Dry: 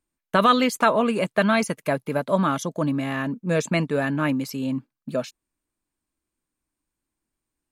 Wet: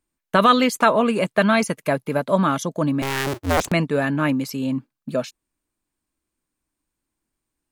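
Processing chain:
0:03.02–0:03.72: sub-harmonics by changed cycles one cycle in 2, inverted
level +2.5 dB

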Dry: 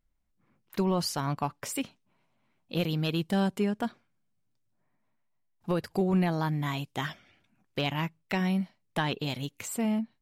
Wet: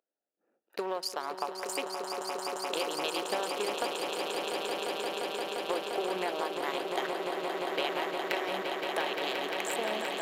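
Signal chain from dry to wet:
adaptive Wiener filter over 41 samples
high-pass filter 440 Hz 24 dB per octave
downward compressor, threshold −39 dBFS, peak gain reduction 13.5 dB
on a send: echo that builds up and dies away 174 ms, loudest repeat 8, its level −7 dB
on the sum: level +8 dB

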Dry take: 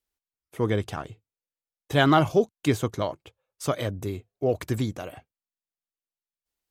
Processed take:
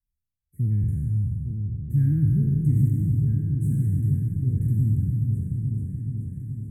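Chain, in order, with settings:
peak hold with a decay on every bin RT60 1.94 s
inverse Chebyshev band-stop filter 740–4,500 Hz, stop band 50 dB
low-shelf EQ 320 Hz +3 dB
in parallel at −3 dB: brickwall limiter −19.5 dBFS, peak gain reduction 9.5 dB
on the sum: drawn EQ curve 150 Hz 0 dB, 330 Hz −21 dB, 570 Hz −27 dB, 1,000 Hz −14 dB, 1,600 Hz +13 dB, 2,300 Hz +9 dB, 4,400 Hz −28 dB, 7,400 Hz −16 dB
on a send: echo whose low-pass opens from repeat to repeat 429 ms, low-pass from 200 Hz, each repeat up 2 octaves, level −3 dB

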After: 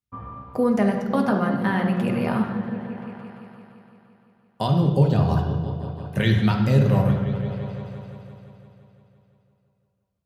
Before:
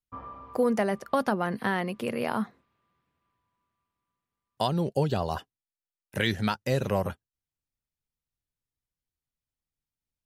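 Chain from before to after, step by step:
high-pass filter 72 Hz
bass and treble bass +9 dB, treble −3 dB
echo whose low-pass opens from repeat to repeat 171 ms, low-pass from 200 Hz, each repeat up 1 octave, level −6 dB
on a send at −1.5 dB: convolution reverb RT60 1.1 s, pre-delay 3 ms

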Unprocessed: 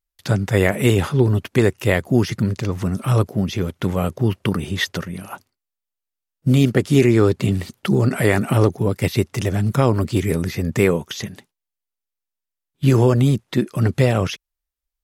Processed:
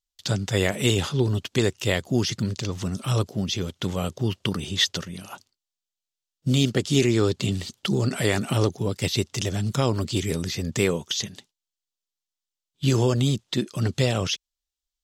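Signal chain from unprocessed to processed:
flat-topped bell 4,800 Hz +11 dB
level −6.5 dB

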